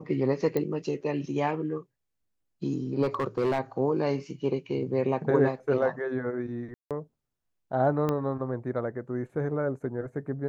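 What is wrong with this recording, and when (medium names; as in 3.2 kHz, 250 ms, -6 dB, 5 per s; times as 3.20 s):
0.57 s: pop -16 dBFS
3.02–3.60 s: clipped -21.5 dBFS
6.74–6.91 s: dropout 167 ms
8.09 s: pop -16 dBFS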